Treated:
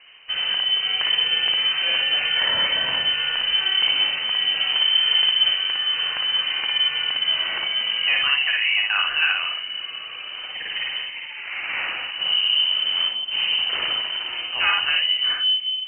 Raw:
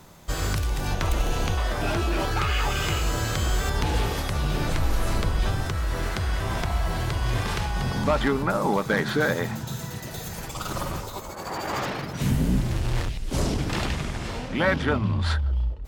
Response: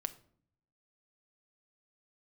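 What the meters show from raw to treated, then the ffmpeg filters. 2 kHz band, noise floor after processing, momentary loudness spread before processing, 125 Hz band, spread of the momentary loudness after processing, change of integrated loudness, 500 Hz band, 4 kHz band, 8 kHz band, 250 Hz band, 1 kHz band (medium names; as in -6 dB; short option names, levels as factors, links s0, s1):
+7.5 dB, -34 dBFS, 8 LU, under -25 dB, 10 LU, +7.5 dB, -13.0 dB, +19.5 dB, under -40 dB, under -20 dB, -4.0 dB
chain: -filter_complex "[0:a]asplit=2[s0][s1];[1:a]atrim=start_sample=2205,asetrate=61740,aresample=44100,adelay=57[s2];[s1][s2]afir=irnorm=-1:irlink=0,volume=1.26[s3];[s0][s3]amix=inputs=2:normalize=0,lowpass=f=2600:t=q:w=0.5098,lowpass=f=2600:t=q:w=0.6013,lowpass=f=2600:t=q:w=0.9,lowpass=f=2600:t=q:w=2.563,afreqshift=-3100"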